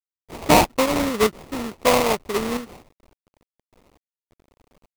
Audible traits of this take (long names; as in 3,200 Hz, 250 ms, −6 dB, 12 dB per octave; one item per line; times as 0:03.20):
aliases and images of a low sample rate 1,600 Hz, jitter 20%
sample-and-hold tremolo, depth 80%
a quantiser's noise floor 10 bits, dither none